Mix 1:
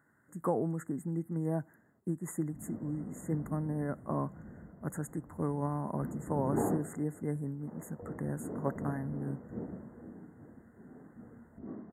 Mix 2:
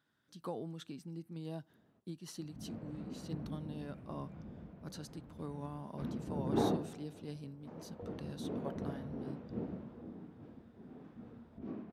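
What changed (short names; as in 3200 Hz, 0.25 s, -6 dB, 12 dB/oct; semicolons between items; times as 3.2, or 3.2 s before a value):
speech -10.5 dB; master: remove brick-wall FIR band-stop 2100–6600 Hz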